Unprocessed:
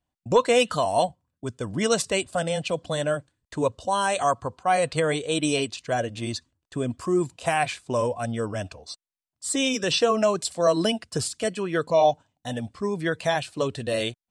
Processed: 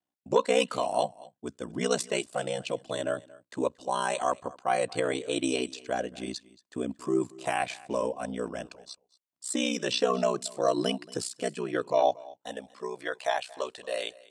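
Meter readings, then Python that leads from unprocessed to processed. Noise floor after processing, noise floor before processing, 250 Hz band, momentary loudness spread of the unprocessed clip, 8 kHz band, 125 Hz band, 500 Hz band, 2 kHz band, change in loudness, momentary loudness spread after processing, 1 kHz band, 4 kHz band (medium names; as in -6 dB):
-85 dBFS, under -85 dBFS, -5.0 dB, 12 LU, -6.0 dB, -11.5 dB, -5.0 dB, -6.0 dB, -5.0 dB, 14 LU, -5.5 dB, -6.0 dB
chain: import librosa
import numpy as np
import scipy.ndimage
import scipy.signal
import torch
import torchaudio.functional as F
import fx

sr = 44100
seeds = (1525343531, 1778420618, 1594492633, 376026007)

y = fx.filter_sweep_highpass(x, sr, from_hz=240.0, to_hz=630.0, start_s=11.76, end_s=13.15, q=1.2)
y = y * np.sin(2.0 * np.pi * 31.0 * np.arange(len(y)) / sr)
y = y + 10.0 ** (-21.5 / 20.0) * np.pad(y, (int(229 * sr / 1000.0), 0))[:len(y)]
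y = F.gain(torch.from_numpy(y), -3.0).numpy()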